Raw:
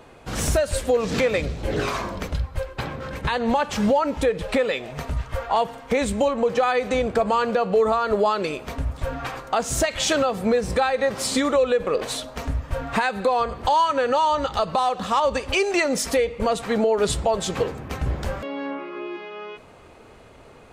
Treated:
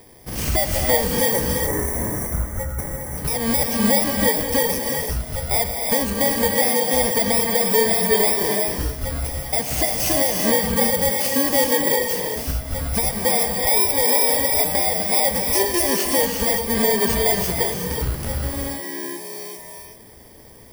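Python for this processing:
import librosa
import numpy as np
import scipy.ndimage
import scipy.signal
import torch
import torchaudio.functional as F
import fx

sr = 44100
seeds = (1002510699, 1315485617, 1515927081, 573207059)

y = fx.bit_reversed(x, sr, seeds[0], block=32)
y = fx.spec_box(y, sr, start_s=1.31, length_s=1.87, low_hz=2300.0, high_hz=5600.0, gain_db=-19)
y = fx.rev_gated(y, sr, seeds[1], gate_ms=410, shape='rising', drr_db=1.0)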